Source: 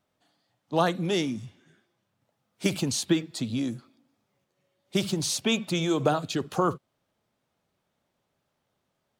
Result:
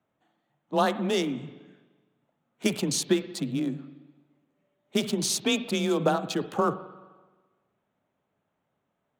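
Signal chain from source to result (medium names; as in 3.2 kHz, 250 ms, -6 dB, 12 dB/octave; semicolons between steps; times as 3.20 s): local Wiener filter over 9 samples; treble shelf 7.5 kHz +5 dB; spring tank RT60 1.3 s, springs 42/59 ms, chirp 65 ms, DRR 13 dB; frequency shift +25 Hz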